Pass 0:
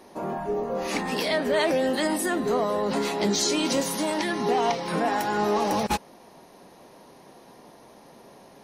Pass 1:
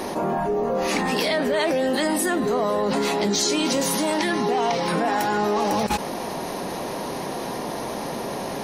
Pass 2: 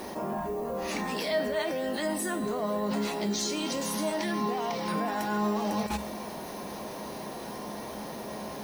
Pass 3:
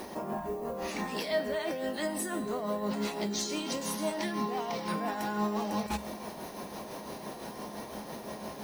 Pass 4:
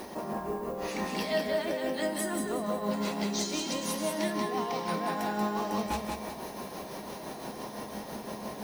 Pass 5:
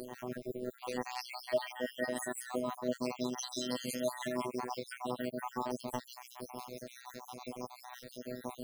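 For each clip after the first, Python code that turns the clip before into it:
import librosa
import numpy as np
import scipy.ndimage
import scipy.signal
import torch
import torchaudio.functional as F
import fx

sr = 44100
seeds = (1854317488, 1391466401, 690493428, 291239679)

y1 = fx.env_flatten(x, sr, amount_pct=70)
y2 = fx.peak_eq(y1, sr, hz=68.0, db=10.5, octaves=0.23)
y2 = fx.dmg_noise_colour(y2, sr, seeds[0], colour='violet', level_db=-46.0)
y2 = fx.comb_fb(y2, sr, f0_hz=210.0, decay_s=0.74, harmonics='odd', damping=0.0, mix_pct=80)
y2 = F.gain(torch.from_numpy(y2), 3.5).numpy()
y3 = y2 * (1.0 - 0.44 / 2.0 + 0.44 / 2.0 * np.cos(2.0 * np.pi * 5.9 * (np.arange(len(y2)) / sr)))
y3 = F.gain(torch.from_numpy(y3), -1.0).numpy()
y4 = fx.echo_feedback(y3, sr, ms=184, feedback_pct=34, wet_db=-4.0)
y5 = fx.spec_dropout(y4, sr, seeds[1], share_pct=66)
y5 = fx.robotise(y5, sr, hz=125.0)
y5 = F.gain(torch.from_numpy(y5), 1.0).numpy()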